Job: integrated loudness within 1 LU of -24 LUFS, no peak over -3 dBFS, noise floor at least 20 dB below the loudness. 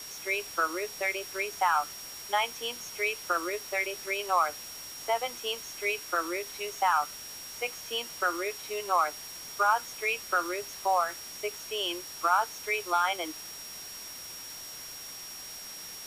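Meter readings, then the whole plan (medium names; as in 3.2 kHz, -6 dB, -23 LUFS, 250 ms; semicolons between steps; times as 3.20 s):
steady tone 5.6 kHz; tone level -43 dBFS; noise floor -43 dBFS; noise floor target -51 dBFS; loudness -31.0 LUFS; peak level -11.5 dBFS; loudness target -24.0 LUFS
-> band-stop 5.6 kHz, Q 30; noise print and reduce 8 dB; trim +7 dB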